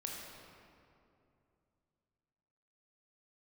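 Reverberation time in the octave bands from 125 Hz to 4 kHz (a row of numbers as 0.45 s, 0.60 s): 3.6 s, 3.1 s, 2.8 s, 2.5 s, 2.0 s, 1.5 s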